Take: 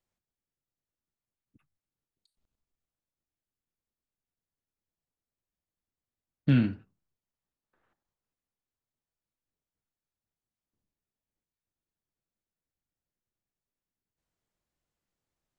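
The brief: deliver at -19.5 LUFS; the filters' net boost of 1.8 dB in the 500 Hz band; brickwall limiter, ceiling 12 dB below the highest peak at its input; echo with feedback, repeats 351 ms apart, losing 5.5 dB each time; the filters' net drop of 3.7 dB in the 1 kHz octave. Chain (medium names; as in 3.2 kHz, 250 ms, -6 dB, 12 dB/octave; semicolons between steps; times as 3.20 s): peaking EQ 500 Hz +4 dB; peaking EQ 1 kHz -7.5 dB; peak limiter -25.5 dBFS; feedback delay 351 ms, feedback 53%, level -5.5 dB; trim +20 dB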